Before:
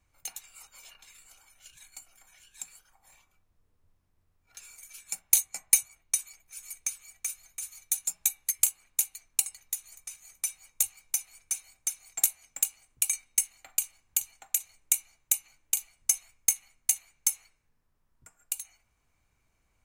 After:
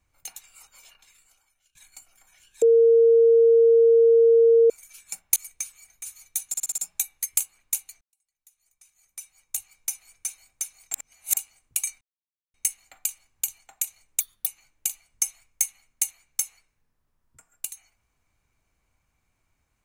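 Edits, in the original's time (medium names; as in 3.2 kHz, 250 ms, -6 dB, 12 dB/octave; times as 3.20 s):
0.75–1.75 s: fade out, to -22.5 dB
2.62–4.70 s: bleep 460 Hz -12.5 dBFS
5.36–6.62 s: delete
7.16–7.46 s: delete
8.04 s: stutter 0.06 s, 6 plays
9.27–11.18 s: fade in quadratic
12.20–12.63 s: reverse
13.27 s: insert silence 0.53 s
14.93–15.34 s: speed 155%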